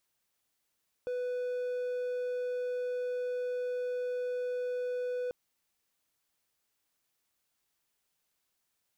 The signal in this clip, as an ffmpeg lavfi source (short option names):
-f lavfi -i "aevalsrc='0.0335*(1-4*abs(mod(496*t+0.25,1)-0.5))':d=4.24:s=44100"